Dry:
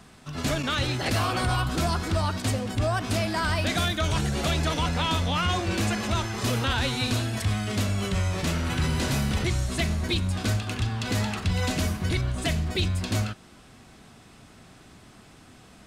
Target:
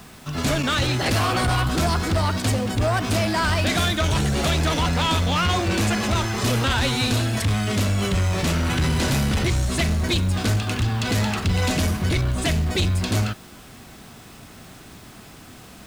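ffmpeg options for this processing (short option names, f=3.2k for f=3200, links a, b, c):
-af "aeval=exprs='0.15*sin(PI/2*1.41*val(0)/0.15)':c=same,acrusher=bits=7:mix=0:aa=0.000001"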